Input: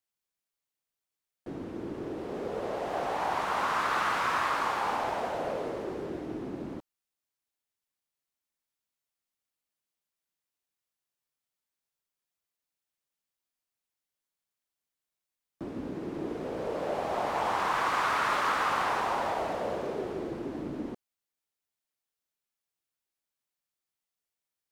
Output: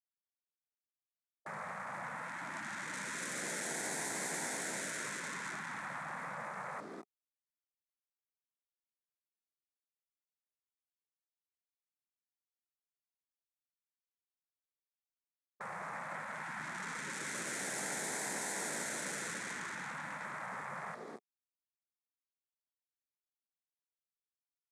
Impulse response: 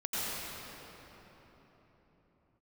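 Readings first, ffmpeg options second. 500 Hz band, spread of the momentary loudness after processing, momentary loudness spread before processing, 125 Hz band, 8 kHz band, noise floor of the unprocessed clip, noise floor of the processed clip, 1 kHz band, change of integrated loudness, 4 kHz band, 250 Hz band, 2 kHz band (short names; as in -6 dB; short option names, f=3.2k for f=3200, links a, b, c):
-14.0 dB, 7 LU, 12 LU, -8.0 dB, +9.0 dB, under -85 dBFS, under -85 dBFS, -13.5 dB, -8.5 dB, -6.5 dB, -11.5 dB, -5.0 dB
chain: -filter_complex "[0:a]highshelf=f=2.8k:t=q:w=3:g=-10,aecho=1:1:210:0.224,acrossover=split=260[a][b];[a]alimiter=level_in=17.5dB:limit=-24dB:level=0:latency=1,volume=-17.5dB[c];[b]aeval=exprs='(tanh(79.4*val(0)+0.7)-tanh(0.7))/79.4':c=same[d];[c][d]amix=inputs=2:normalize=0,aexciter=amount=5.7:drive=7.9:freq=6.7k,bandreject=f=60:t=h:w=6,bandreject=f=120:t=h:w=6,bandreject=f=180:t=h:w=6,bandreject=f=240:t=h:w=6,bandreject=f=300:t=h:w=6,bandreject=f=360:t=h:w=6,bandreject=f=420:t=h:w=6,acrossover=split=280[e][f];[f]acompressor=threshold=-41dB:ratio=4[g];[e][g]amix=inputs=2:normalize=0,aeval=exprs='val(0)*gte(abs(val(0)),0.00119)':c=same,highpass=f=200:w=0.5412,highpass=f=200:w=1.3066,equalizer=f=410:t=q:w=4:g=6,equalizer=f=730:t=q:w=4:g=5,equalizer=f=1.2k:t=q:w=4:g=9,equalizer=f=1.8k:t=q:w=4:g=3,equalizer=f=2.9k:t=q:w=4:g=-9,lowpass=f=9.2k:w=0.5412,lowpass=f=9.2k:w=1.3066,afftfilt=real='re*lt(hypot(re,im),0.0178)':imag='im*lt(hypot(re,im),0.0178)':win_size=1024:overlap=0.75,volume=8dB"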